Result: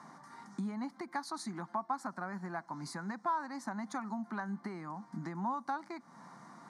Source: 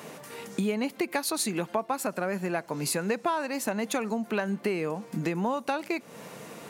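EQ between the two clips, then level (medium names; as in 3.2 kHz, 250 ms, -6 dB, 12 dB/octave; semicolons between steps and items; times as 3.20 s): cabinet simulation 230–8100 Hz, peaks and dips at 330 Hz -3 dB, 600 Hz -10 dB, 1.5 kHz -3 dB, 3.3 kHz -7 dB, 7.4 kHz -7 dB; treble shelf 3 kHz -10 dB; static phaser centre 1.1 kHz, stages 4; -1.0 dB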